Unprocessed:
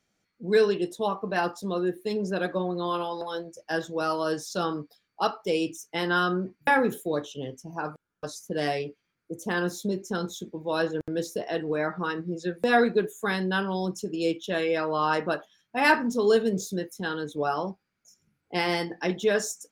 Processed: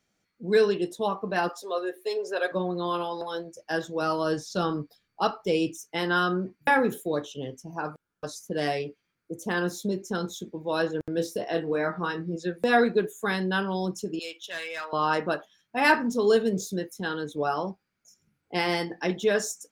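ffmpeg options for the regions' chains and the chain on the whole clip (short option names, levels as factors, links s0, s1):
-filter_complex "[0:a]asettb=1/sr,asplit=3[s0][s1][s2];[s0]atrim=end=1.494[s3];[s1]atrim=start=1.49:end=2.52,asetpts=PTS-STARTPTS,afade=t=in:d=0.004:c=qsin,afade=t=out:st=1.026:d=0.004:c=qsin,highpass=f=400:w=0.5412,highpass=f=400:w=1.3066,aecho=1:1:7.4:0.63,atrim=end_sample=45423[s4];[s2]atrim=start=2.516[s5];[s3][s4]acrossfade=d=0.004:c1=hsin:c2=qsin[s6];[s6][s5]acrossfade=d=0.004:c1=qsin:c2=hsin,asettb=1/sr,asplit=3[s7][s8][s9];[s7]atrim=end=4.024[s10];[s8]atrim=start=4.02:end=5.7,asetpts=PTS-STARTPTS,afade=t=in:d=0.004:c=qsin,afade=t=out:st=1.676:d=0.004:c=qsin,acrossover=split=6700[s11][s12];[s12]acompressor=threshold=0.00251:ratio=4:attack=1:release=60[s13];[s11][s13]amix=inputs=2:normalize=0,lowshelf=f=140:g=10.5[s14];[s9]atrim=start=5.696[s15];[s10][s14]acrossfade=d=0.004:c1=hsin:c2=qsin[s16];[s16][s15]acrossfade=d=0.004:c1=qsin:c2=hsin,asettb=1/sr,asplit=3[s17][s18][s19];[s17]atrim=end=11.154[s20];[s18]atrim=start=11.15:end=12.36,asetpts=PTS-STARTPTS,afade=t=in:d=0.004:c=qsin,afade=t=out:st=1.206:d=0.004:c=qsin,bandreject=f=6700:w=13,asplit=2[s21][s22];[s22]adelay=24,volume=0.447[s23];[s21][s23]amix=inputs=2:normalize=0,atrim=end_sample=53361[s24];[s19]atrim=start=12.356[s25];[s20][s24]acrossfade=d=0.004:c1=hsin:c2=qsin[s26];[s26][s25]acrossfade=d=0.004:c1=qsin:c2=hsin,asettb=1/sr,asplit=3[s27][s28][s29];[s27]atrim=end=14.194[s30];[s28]atrim=start=14.19:end=14.93,asetpts=PTS-STARTPTS,afade=t=in:d=0.004:c=qsin,afade=t=out:st=0.736:d=0.004:c=qsin,highpass=1100,asoftclip=type=hard:threshold=0.0398[s31];[s29]atrim=start=14.926[s32];[s30][s31]acrossfade=d=0.004:c1=hsin:c2=qsin[s33];[s33][s32]acrossfade=d=0.004:c1=qsin:c2=hsin"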